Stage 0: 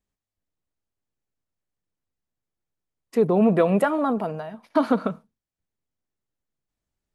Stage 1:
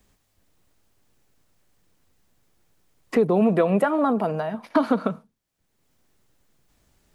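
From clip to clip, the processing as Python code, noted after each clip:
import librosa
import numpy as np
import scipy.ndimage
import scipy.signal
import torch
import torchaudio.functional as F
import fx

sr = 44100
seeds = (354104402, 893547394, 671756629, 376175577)

y = fx.band_squash(x, sr, depth_pct=70)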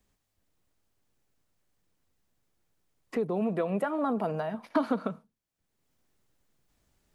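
y = fx.rider(x, sr, range_db=3, speed_s=0.5)
y = F.gain(torch.from_numpy(y), -7.5).numpy()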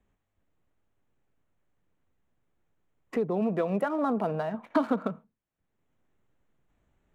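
y = fx.wiener(x, sr, points=9)
y = F.gain(torch.from_numpy(y), 1.5).numpy()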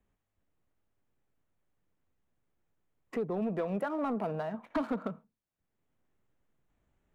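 y = 10.0 ** (-19.0 / 20.0) * np.tanh(x / 10.0 ** (-19.0 / 20.0))
y = F.gain(torch.from_numpy(y), -4.0).numpy()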